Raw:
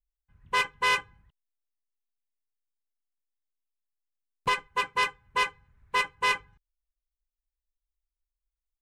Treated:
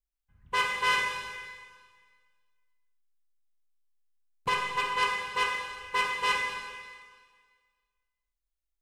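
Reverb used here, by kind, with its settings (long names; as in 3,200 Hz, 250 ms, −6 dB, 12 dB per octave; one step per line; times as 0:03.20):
four-comb reverb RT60 1.7 s, combs from 31 ms, DRR 0.5 dB
level −3 dB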